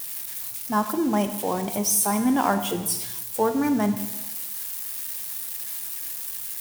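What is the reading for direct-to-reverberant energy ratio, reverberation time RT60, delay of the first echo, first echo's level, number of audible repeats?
8.0 dB, 1.1 s, no echo, no echo, no echo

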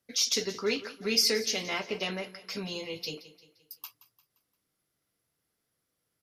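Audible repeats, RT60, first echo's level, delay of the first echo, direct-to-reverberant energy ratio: 3, no reverb, -16.5 dB, 174 ms, no reverb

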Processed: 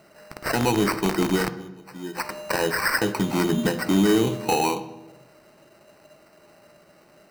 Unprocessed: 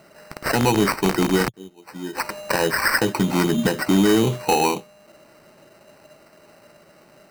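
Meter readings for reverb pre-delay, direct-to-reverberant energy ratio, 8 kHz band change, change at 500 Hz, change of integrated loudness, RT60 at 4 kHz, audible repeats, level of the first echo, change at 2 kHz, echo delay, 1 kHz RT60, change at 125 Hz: 3 ms, 11.5 dB, -3.5 dB, -3.0 dB, -3.0 dB, 0.75 s, no echo, no echo, -3.0 dB, no echo, 1.0 s, -3.5 dB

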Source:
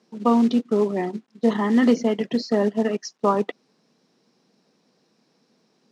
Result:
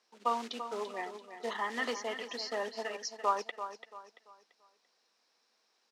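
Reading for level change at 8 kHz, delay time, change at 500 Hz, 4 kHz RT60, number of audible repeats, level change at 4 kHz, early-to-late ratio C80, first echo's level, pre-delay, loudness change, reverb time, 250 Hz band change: no reading, 339 ms, -15.5 dB, no reverb, 3, -4.0 dB, no reverb, -10.5 dB, no reverb, -14.5 dB, no reverb, -27.5 dB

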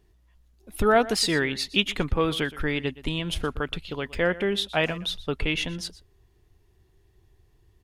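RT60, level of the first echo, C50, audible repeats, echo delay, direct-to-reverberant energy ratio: no reverb, -18.0 dB, no reverb, 1, 120 ms, no reverb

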